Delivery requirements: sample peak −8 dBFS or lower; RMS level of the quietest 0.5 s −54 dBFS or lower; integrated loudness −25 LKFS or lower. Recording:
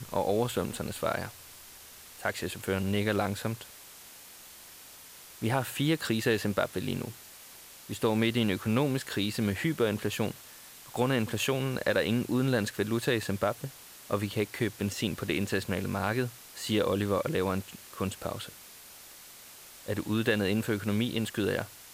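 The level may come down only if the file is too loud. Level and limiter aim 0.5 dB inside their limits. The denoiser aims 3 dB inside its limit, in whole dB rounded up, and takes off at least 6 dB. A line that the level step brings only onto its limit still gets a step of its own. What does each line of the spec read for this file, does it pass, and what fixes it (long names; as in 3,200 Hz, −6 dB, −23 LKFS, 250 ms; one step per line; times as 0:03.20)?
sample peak −13.5 dBFS: in spec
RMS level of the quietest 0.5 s −50 dBFS: out of spec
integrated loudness −30.5 LKFS: in spec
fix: broadband denoise 7 dB, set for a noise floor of −50 dBFS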